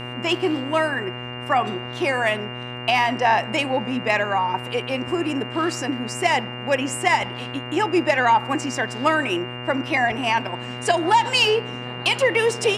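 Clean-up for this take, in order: de-click; de-hum 122.9 Hz, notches 20; notch 2800 Hz, Q 30

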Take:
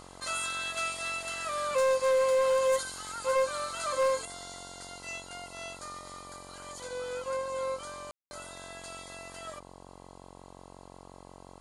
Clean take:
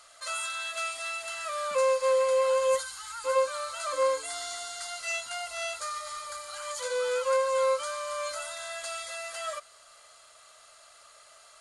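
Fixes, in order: clip repair -21.5 dBFS; de-hum 45.6 Hz, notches 24; room tone fill 8.11–8.31; gain 0 dB, from 4.25 s +8 dB

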